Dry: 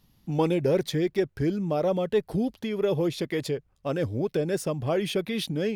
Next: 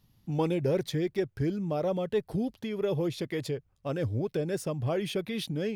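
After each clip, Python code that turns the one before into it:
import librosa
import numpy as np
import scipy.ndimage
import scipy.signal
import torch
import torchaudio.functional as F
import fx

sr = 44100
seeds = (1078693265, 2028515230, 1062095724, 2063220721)

y = fx.peak_eq(x, sr, hz=110.0, db=7.0, octaves=0.64)
y = y * librosa.db_to_amplitude(-4.5)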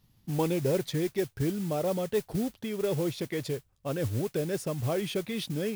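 y = fx.mod_noise(x, sr, seeds[0], snr_db=17)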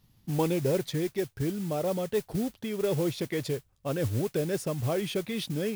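y = fx.rider(x, sr, range_db=10, speed_s=2.0)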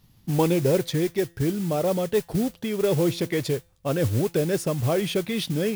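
y = fx.comb_fb(x, sr, f0_hz=170.0, decay_s=0.51, harmonics='all', damping=0.0, mix_pct=30)
y = y * librosa.db_to_amplitude(8.5)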